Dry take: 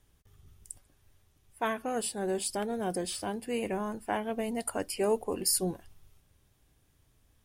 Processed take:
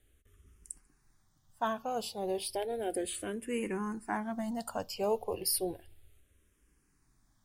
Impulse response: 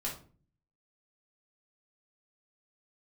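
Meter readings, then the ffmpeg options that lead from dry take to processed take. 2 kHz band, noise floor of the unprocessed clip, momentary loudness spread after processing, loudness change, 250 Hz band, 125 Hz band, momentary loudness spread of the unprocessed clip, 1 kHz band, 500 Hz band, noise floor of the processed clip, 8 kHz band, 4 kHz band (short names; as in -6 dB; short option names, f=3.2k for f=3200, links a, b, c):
-3.5 dB, -68 dBFS, 9 LU, -3.0 dB, -2.5 dB, -5.5 dB, 10 LU, -1.5 dB, -2.5 dB, -72 dBFS, -5.0 dB, -2.5 dB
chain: -filter_complex "[0:a]asplit=2[a][b];[1:a]atrim=start_sample=2205[c];[b][c]afir=irnorm=-1:irlink=0,volume=-24dB[d];[a][d]amix=inputs=2:normalize=0,asplit=2[e][f];[f]afreqshift=-0.33[g];[e][g]amix=inputs=2:normalize=1"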